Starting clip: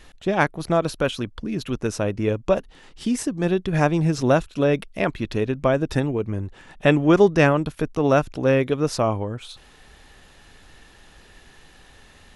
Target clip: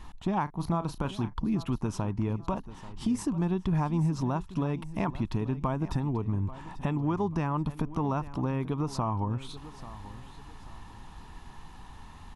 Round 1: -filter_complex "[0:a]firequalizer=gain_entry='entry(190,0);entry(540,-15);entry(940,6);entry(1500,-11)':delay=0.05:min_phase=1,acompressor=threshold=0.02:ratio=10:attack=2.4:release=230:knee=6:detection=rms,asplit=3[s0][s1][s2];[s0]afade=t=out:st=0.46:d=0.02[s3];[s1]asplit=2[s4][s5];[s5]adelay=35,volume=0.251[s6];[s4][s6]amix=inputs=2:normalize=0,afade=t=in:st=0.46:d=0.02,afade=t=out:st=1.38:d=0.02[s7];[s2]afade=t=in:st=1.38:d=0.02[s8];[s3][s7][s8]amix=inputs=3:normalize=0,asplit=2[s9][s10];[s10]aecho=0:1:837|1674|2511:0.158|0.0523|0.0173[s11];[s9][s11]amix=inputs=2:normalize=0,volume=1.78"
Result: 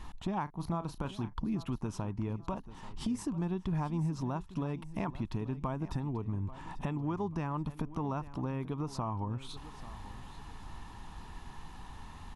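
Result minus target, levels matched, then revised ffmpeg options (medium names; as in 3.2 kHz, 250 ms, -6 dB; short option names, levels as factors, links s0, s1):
compression: peak gain reduction +6 dB
-filter_complex "[0:a]firequalizer=gain_entry='entry(190,0);entry(540,-15);entry(940,6);entry(1500,-11)':delay=0.05:min_phase=1,acompressor=threshold=0.0422:ratio=10:attack=2.4:release=230:knee=6:detection=rms,asplit=3[s0][s1][s2];[s0]afade=t=out:st=0.46:d=0.02[s3];[s1]asplit=2[s4][s5];[s5]adelay=35,volume=0.251[s6];[s4][s6]amix=inputs=2:normalize=0,afade=t=in:st=0.46:d=0.02,afade=t=out:st=1.38:d=0.02[s7];[s2]afade=t=in:st=1.38:d=0.02[s8];[s3][s7][s8]amix=inputs=3:normalize=0,asplit=2[s9][s10];[s10]aecho=0:1:837|1674|2511:0.158|0.0523|0.0173[s11];[s9][s11]amix=inputs=2:normalize=0,volume=1.78"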